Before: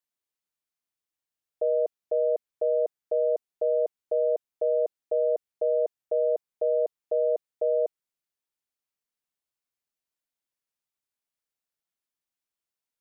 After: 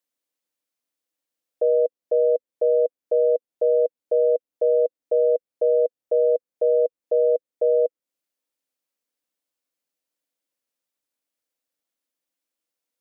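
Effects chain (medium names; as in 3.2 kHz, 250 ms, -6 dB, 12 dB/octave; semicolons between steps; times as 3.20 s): small resonant body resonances 290/500 Hz, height 15 dB, ringing for 30 ms; tape noise reduction on one side only encoder only; trim -6 dB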